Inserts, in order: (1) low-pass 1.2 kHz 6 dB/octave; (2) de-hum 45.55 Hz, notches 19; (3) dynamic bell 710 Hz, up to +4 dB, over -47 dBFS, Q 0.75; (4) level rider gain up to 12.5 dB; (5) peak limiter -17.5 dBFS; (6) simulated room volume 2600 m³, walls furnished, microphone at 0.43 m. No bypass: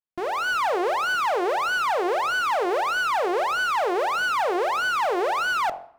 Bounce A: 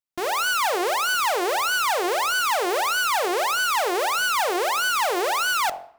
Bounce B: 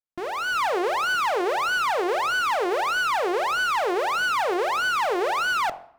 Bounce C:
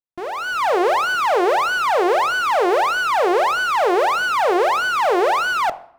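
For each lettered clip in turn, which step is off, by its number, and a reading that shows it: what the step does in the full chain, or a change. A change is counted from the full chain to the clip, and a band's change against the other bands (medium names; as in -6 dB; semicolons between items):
1, 8 kHz band +12.0 dB; 3, 8 kHz band +2.0 dB; 5, mean gain reduction 5.0 dB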